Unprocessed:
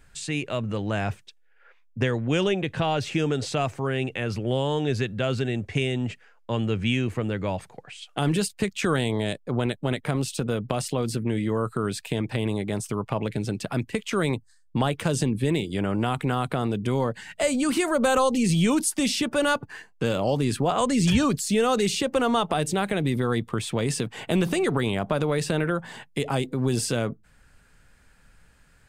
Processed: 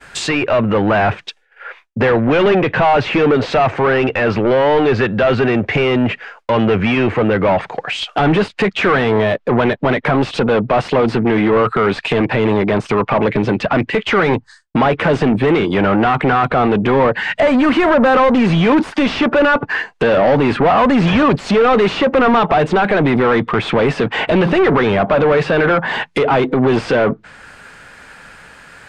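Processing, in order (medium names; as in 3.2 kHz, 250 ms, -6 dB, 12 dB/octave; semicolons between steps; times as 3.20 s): overdrive pedal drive 29 dB, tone 2.1 kHz, clips at -8.5 dBFS; low-pass that closes with the level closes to 2.5 kHz, closed at -17.5 dBFS; expander -42 dBFS; trim +4.5 dB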